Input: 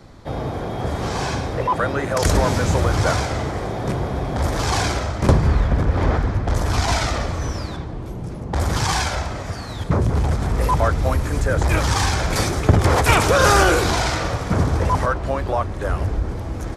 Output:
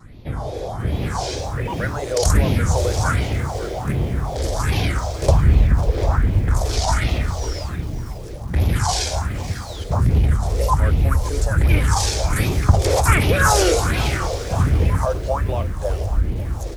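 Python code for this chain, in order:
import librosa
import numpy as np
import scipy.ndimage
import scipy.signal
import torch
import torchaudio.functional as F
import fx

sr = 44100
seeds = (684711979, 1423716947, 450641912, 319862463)

y = fx.phaser_stages(x, sr, stages=4, low_hz=180.0, high_hz=1300.0, hz=1.3, feedback_pct=45)
y = fx.wow_flutter(y, sr, seeds[0], rate_hz=2.1, depth_cents=89.0)
y = fx.echo_crushed(y, sr, ms=548, feedback_pct=35, bits=6, wet_db=-15.0)
y = F.gain(torch.from_numpy(y), 1.5).numpy()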